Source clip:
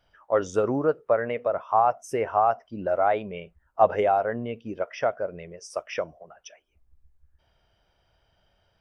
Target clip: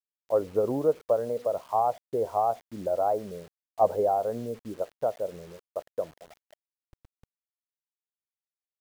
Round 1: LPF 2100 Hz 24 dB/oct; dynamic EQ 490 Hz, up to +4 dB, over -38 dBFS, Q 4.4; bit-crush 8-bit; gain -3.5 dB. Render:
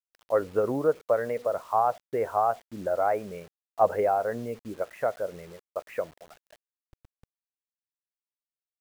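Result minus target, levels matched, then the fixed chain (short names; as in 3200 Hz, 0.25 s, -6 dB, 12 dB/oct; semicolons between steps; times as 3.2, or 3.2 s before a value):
2000 Hz band +13.5 dB
LPF 980 Hz 24 dB/oct; dynamic EQ 490 Hz, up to +4 dB, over -38 dBFS, Q 4.4; bit-crush 8-bit; gain -3.5 dB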